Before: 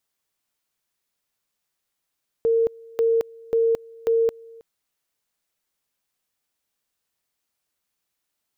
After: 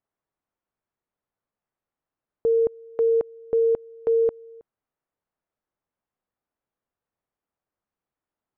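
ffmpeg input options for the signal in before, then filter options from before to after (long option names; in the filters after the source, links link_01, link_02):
-f lavfi -i "aevalsrc='pow(10,(-16-25*gte(mod(t,0.54),0.22))/20)*sin(2*PI*457*t)':duration=2.16:sample_rate=44100"
-af "lowpass=1200"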